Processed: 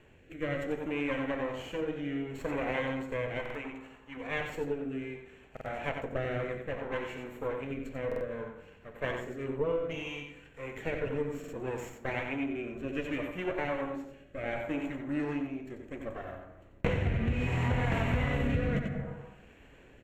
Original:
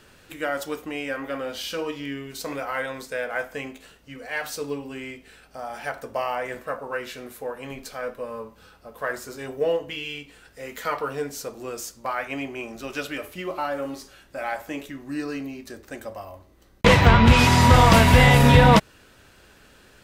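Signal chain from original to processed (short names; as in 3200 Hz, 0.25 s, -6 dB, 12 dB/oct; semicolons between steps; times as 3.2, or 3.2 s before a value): minimum comb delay 0.4 ms; 3.39–4.17 ten-band EQ 125 Hz -12 dB, 500 Hz -5 dB, 1000 Hz +7 dB; echo 90 ms -7 dB; on a send at -11 dB: reverb RT60 1.1 s, pre-delay 57 ms; on the sum: rotary speaker horn 0.65 Hz; running mean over 9 samples; bell 210 Hz -4.5 dB 0.43 oct; compressor 6:1, threshold -27 dBFS, peak gain reduction 15.5 dB; stuck buffer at 3.41/5.52/8.07/11.39, samples 2048, times 2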